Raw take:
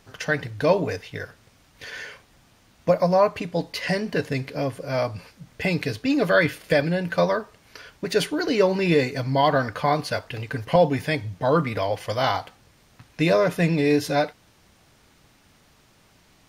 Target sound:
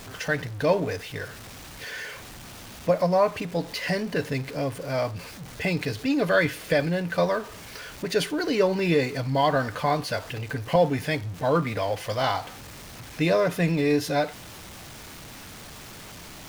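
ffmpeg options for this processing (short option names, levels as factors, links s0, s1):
-af "aeval=exprs='val(0)+0.5*0.0188*sgn(val(0))':c=same,volume=0.708"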